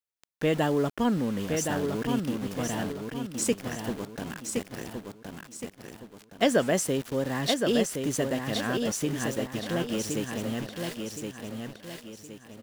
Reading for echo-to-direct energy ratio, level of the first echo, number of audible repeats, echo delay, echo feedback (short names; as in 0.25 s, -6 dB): -4.5 dB, -5.0 dB, 4, 1.068 s, 39%